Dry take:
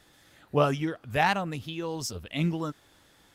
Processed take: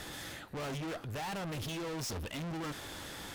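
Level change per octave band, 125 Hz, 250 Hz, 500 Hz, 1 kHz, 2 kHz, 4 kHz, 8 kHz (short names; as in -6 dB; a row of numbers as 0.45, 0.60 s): -8.5, -9.0, -11.5, -12.5, -10.0, -4.5, -2.5 dB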